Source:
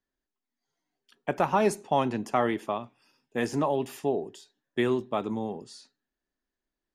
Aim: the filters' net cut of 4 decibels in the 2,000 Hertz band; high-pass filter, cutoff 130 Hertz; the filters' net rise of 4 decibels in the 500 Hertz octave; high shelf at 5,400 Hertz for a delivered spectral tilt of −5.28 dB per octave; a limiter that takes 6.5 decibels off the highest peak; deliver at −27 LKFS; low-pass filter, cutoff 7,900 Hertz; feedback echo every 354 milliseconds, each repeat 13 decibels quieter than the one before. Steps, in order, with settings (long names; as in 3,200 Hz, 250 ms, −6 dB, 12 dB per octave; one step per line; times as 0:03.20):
high-pass filter 130 Hz
low-pass filter 7,900 Hz
parametric band 500 Hz +5.5 dB
parametric band 2,000 Hz −6.5 dB
high-shelf EQ 5,400 Hz +8.5 dB
brickwall limiter −16 dBFS
repeating echo 354 ms, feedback 22%, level −13 dB
level +2 dB